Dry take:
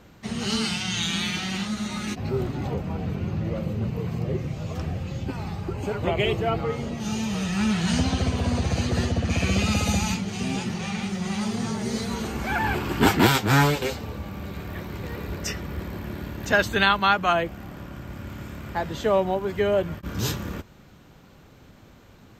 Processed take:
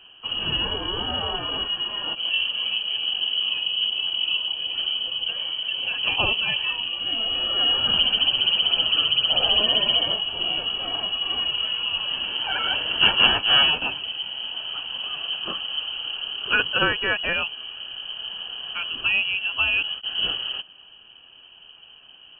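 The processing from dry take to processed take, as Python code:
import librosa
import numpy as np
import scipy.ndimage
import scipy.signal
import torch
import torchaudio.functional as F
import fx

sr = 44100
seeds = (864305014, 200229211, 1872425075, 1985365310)

y = fx.fixed_phaser(x, sr, hz=2400.0, stages=4)
y = fx.freq_invert(y, sr, carrier_hz=3100)
y = y * librosa.db_to_amplitude(2.5)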